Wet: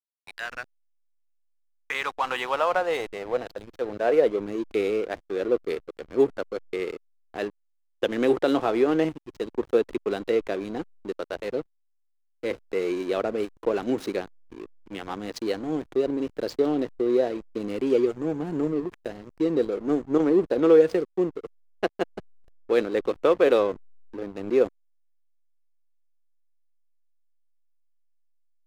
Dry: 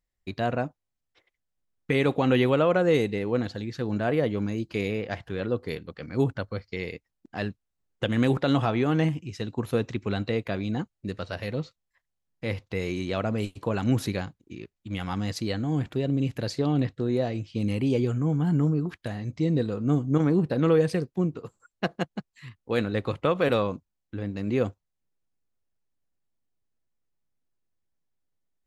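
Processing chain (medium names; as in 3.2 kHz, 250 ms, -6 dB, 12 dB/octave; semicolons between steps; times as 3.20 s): high-pass sweep 1.7 kHz -> 380 Hz, 1.04–4.51 s; hysteresis with a dead band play -31 dBFS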